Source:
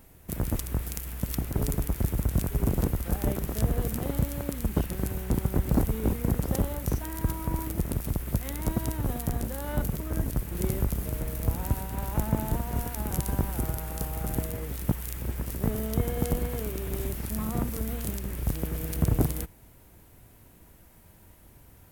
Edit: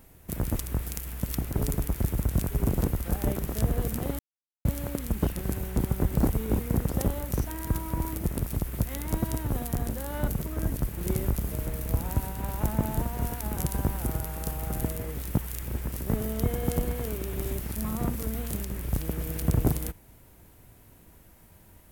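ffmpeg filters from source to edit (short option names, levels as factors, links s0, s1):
-filter_complex "[0:a]asplit=2[s0][s1];[s0]atrim=end=4.19,asetpts=PTS-STARTPTS,afade=t=out:st=4.186:d=0.004:c=hsin,apad=pad_dur=0.46[s2];[s1]atrim=start=4.19,asetpts=PTS-STARTPTS,afade=t=in:d=0.004:c=hsin[s3];[s2][s3]concat=n=2:v=0:a=1"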